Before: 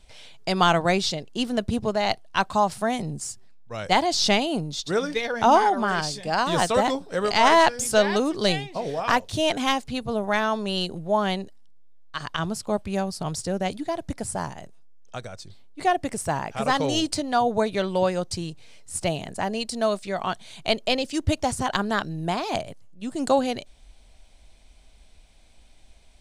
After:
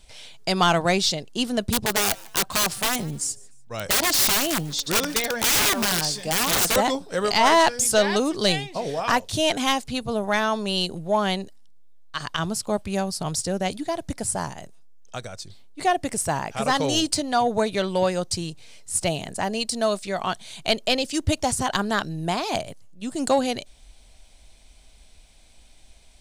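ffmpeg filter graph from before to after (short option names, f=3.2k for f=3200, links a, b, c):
-filter_complex "[0:a]asettb=1/sr,asplit=3[a][b][c];[a]atrim=end=1.704[d];[b]atrim=start=1.7:end=6.76,asetpts=PTS-STARTPTS,afade=t=in:d=0.004:c=qsin,afade=t=out:st=5.056:d=0.004:c=qsin,aeval=exprs='(mod(8.41*val(0)+1,2)-1)/8.41':c=same,asplit=3[e][f][g];[f]adelay=149,afreqshift=130,volume=-23.5dB[h];[g]adelay=298,afreqshift=260,volume=-33.1dB[i];[e][h][i]amix=inputs=3:normalize=0,atrim=end_sample=223146[j];[c]atrim=start=6.756[k];[d][j]acrossfade=d=0.004:c1=hsin:c2=qsin[l];[l][k]acrossfade=d=0.004:c1=qsin:c2=hsin,highshelf=f=3.9k:g=7,acontrast=73,volume=-6dB"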